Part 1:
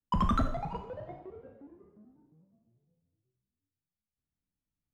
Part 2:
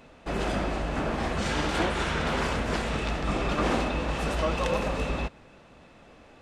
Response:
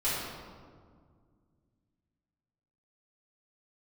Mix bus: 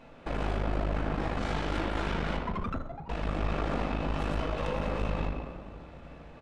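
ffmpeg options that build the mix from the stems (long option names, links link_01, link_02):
-filter_complex "[0:a]adelay=2350,volume=-3dB[link_01];[1:a]acompressor=threshold=-31dB:ratio=6,volume=0.5dB,asplit=3[link_02][link_03][link_04];[link_02]atrim=end=2.37,asetpts=PTS-STARTPTS,afade=type=out:start_time=2.366:duration=0.004:curve=hsin[link_05];[link_03]atrim=start=2.37:end=3.09,asetpts=PTS-STARTPTS,volume=0[link_06];[link_04]atrim=start=3.09,asetpts=PTS-STARTPTS,afade=type=in:duration=0.004:curve=hsin[link_07];[link_05][link_06][link_07]concat=n=3:v=0:a=1,asplit=2[link_08][link_09];[link_09]volume=-6.5dB[link_10];[2:a]atrim=start_sample=2205[link_11];[link_10][link_11]afir=irnorm=-1:irlink=0[link_12];[link_01][link_08][link_12]amix=inputs=3:normalize=0,highshelf=frequency=4900:gain=-11.5,aeval=exprs='(tanh(15.8*val(0)+0.7)-tanh(0.7))/15.8':channel_layout=same"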